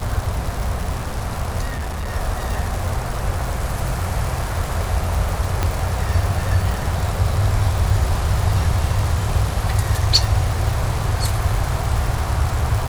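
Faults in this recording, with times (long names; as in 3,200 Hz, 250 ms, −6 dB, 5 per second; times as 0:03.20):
surface crackle 190 per second −23 dBFS
0:01.69–0:02.12: clipping −22 dBFS
0:05.63: click −5 dBFS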